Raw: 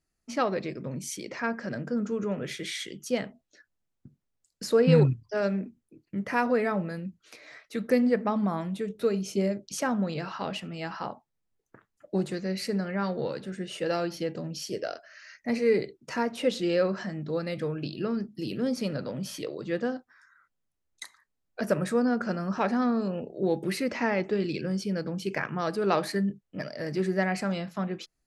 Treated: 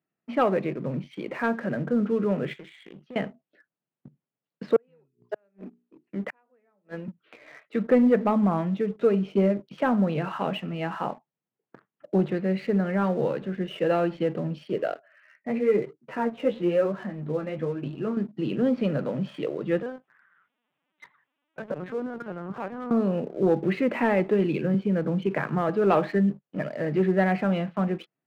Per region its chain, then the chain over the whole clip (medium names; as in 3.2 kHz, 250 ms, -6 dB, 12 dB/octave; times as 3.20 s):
2.53–3.16 s: high-pass 60 Hz + compression 12:1, threshold -43 dBFS + loudspeaker Doppler distortion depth 0.2 ms
4.76–7.08 s: high-pass 250 Hz + hum notches 60/120/180/240/300/360/420 Hz + inverted gate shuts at -25 dBFS, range -39 dB
14.94–18.17 s: distance through air 180 m + flange 1 Hz, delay 6.4 ms, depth 9.4 ms, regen +25%
19.82–22.91 s: compression 2:1, threshold -40 dBFS + word length cut 12-bit, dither triangular + LPC vocoder at 8 kHz pitch kept
24.74–25.69 s: distance through air 250 m + three bands compressed up and down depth 70%
whole clip: elliptic band-pass 140–3100 Hz; treble shelf 2.3 kHz -7 dB; waveshaping leveller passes 1; trim +2.5 dB